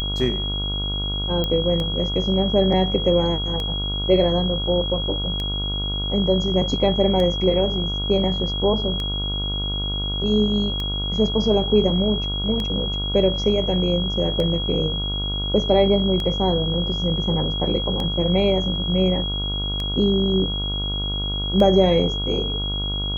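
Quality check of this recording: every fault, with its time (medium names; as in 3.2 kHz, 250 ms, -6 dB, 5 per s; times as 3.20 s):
buzz 50 Hz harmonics 29 -27 dBFS
tick 33 1/3 rpm -14 dBFS
whine 3.3 kHz -26 dBFS
1.44 s: pop -11 dBFS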